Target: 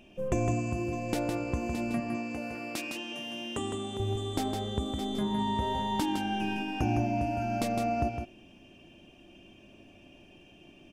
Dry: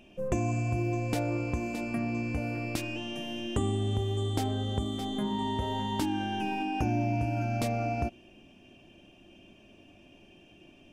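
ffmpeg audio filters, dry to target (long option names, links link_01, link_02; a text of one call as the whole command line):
ffmpeg -i in.wav -filter_complex "[0:a]asettb=1/sr,asplit=3[link_01][link_02][link_03];[link_01]atrim=end=2.004[link_04];[link_02]atrim=start=2:end=4,asetpts=PTS-STARTPTS,afade=type=in:duration=0.004:curve=qsin,afade=type=out:start_time=1.996:duration=0.004:curve=qsin,highpass=frequency=410:poles=1[link_05];[link_03]atrim=start=3.996[link_06];[link_04][link_05]acrossfade=duration=0.004:curve1=hsin:curve2=qsin[link_07];[link_07][link_06]acrossfade=duration=0.004:curve1=qsin:curve2=hsin,aecho=1:1:159:0.531" out.wav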